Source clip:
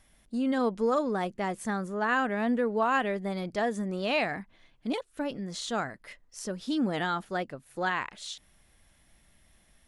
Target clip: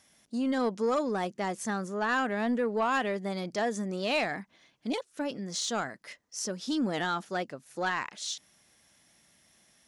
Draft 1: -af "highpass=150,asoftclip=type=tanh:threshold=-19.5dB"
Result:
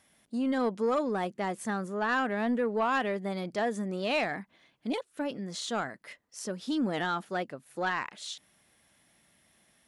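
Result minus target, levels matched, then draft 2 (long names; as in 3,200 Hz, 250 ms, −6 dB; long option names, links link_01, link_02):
8,000 Hz band −6.0 dB
-af "highpass=150,equalizer=frequency=5900:width_type=o:width=0.8:gain=9,asoftclip=type=tanh:threshold=-19.5dB"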